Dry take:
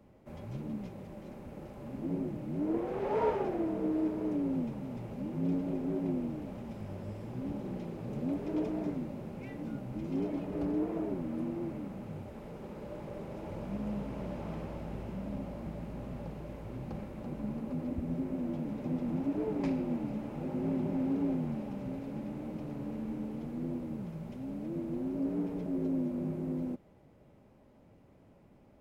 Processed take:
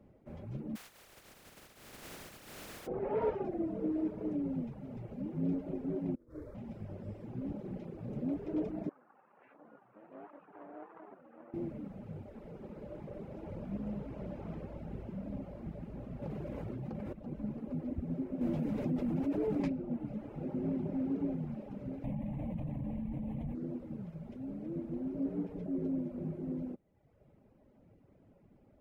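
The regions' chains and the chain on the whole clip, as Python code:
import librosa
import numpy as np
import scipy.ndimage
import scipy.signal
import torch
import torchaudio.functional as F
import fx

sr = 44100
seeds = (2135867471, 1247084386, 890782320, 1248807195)

y = fx.spec_flatten(x, sr, power=0.12, at=(0.75, 2.86), fade=0.02)
y = fx.tube_stage(y, sr, drive_db=37.0, bias=0.35, at=(0.75, 2.86), fade=0.02)
y = fx.chain(y, sr, fx.over_compress(threshold_db=-39.0, ratio=-0.5),
    fx.fixed_phaser(hz=760.0, stages=6), at=(6.15, 6.55))
y = fx.chain(y, sr, fx.lower_of_two(delay_ms=0.72),
    fx.bandpass_edges(low_hz=740.0, high_hz=2100.0),
    fx.air_absorb(metres=400.0), at=(8.89, 11.54))
y = fx.chain(y, sr, fx.highpass(hz=70.0, slope=12),
    fx.doubler(ms=14.0, db=-12.0),
    fx.env_flatten(amount_pct=100), at=(16.22, 17.13))
y = fx.chain(y, sr, fx.high_shelf(hz=2600.0, db=7.5),
    fx.env_flatten(amount_pct=70), at=(18.41, 19.68))
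y = fx.chain(y, sr, fx.low_shelf(hz=220.0, db=8.5),
    fx.fixed_phaser(hz=1400.0, stages=6),
    fx.env_flatten(amount_pct=100), at=(22.04, 23.55))
y = fx.high_shelf(y, sr, hz=2700.0, db=-11.5)
y = fx.dereverb_blind(y, sr, rt60_s=1.0)
y = fx.peak_eq(y, sr, hz=970.0, db=-4.5, octaves=0.69)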